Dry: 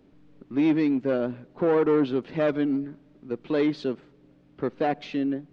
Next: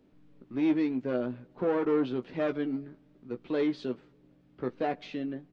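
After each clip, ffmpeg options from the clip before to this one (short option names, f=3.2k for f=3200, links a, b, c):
-filter_complex "[0:a]asplit=2[a][b];[b]adelay=16,volume=-8dB[c];[a][c]amix=inputs=2:normalize=0,volume=-6dB"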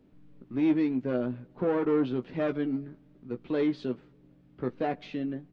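-af "bass=f=250:g=5,treble=f=4k:g=-3"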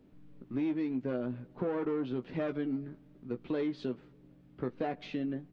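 -af "acompressor=threshold=-30dB:ratio=5"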